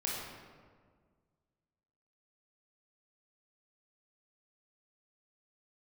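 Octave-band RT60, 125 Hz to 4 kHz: 2.2, 2.1, 1.9, 1.6, 1.3, 0.95 seconds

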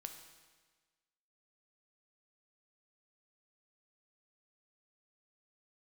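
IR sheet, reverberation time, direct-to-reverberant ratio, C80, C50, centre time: 1.4 s, 5.5 dB, 9.0 dB, 7.5 dB, 26 ms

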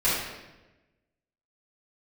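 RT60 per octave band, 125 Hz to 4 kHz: 1.4, 1.3, 1.2, 1.0, 1.0, 0.85 seconds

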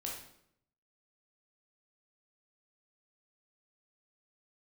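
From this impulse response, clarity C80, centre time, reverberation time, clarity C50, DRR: 7.5 dB, 41 ms, 0.70 s, 3.0 dB, −2.5 dB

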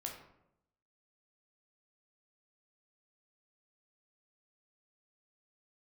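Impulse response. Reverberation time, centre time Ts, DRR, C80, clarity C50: 0.80 s, 30 ms, 0.5 dB, 8.5 dB, 5.5 dB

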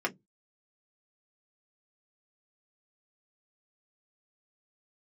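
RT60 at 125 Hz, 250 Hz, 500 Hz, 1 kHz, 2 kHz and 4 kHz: 0.30, 0.25, 0.15, 0.10, 0.10, 0.10 seconds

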